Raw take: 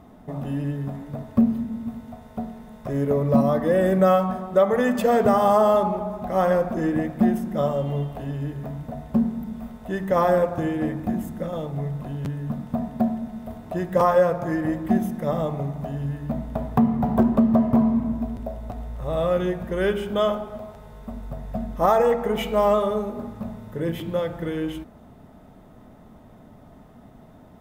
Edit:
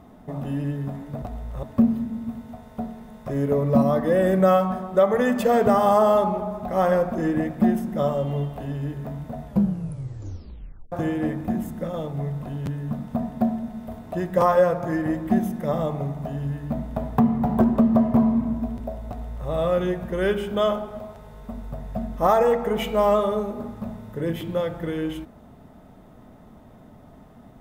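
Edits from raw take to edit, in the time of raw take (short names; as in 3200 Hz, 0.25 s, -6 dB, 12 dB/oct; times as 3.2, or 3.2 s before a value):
9.03 tape stop 1.48 s
18.67–19.08 copy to 1.22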